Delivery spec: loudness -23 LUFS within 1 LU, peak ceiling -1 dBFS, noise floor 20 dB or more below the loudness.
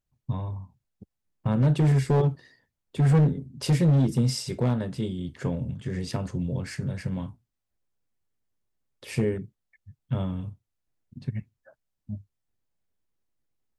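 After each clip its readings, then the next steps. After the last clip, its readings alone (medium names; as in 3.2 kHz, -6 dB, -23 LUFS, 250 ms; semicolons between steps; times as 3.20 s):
clipped samples 1.3%; clipping level -16.0 dBFS; loudness -26.5 LUFS; peak level -16.0 dBFS; loudness target -23.0 LUFS
-> clip repair -16 dBFS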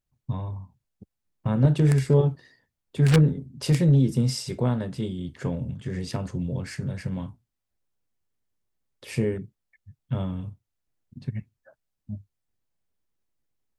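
clipped samples 0.0%; loudness -25.5 LUFS; peak level -7.0 dBFS; loudness target -23.0 LUFS
-> trim +2.5 dB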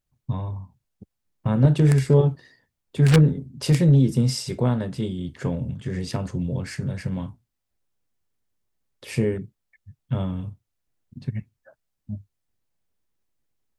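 loudness -23.0 LUFS; peak level -4.5 dBFS; noise floor -80 dBFS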